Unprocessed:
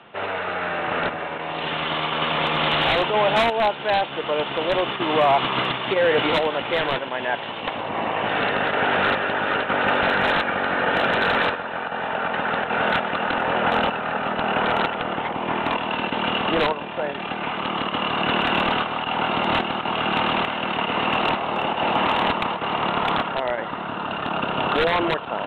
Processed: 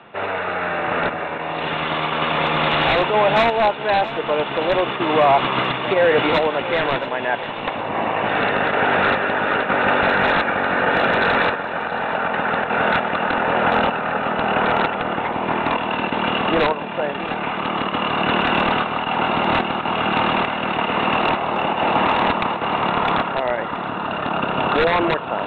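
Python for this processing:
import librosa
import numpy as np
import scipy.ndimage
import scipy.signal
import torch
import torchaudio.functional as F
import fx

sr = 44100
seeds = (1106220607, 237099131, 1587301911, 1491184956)

p1 = fx.air_absorb(x, sr, metres=87.0)
p2 = fx.notch(p1, sr, hz=3100.0, q=9.9)
p3 = p2 + fx.echo_single(p2, sr, ms=675, db=-15.0, dry=0)
y = p3 * librosa.db_to_amplitude(3.5)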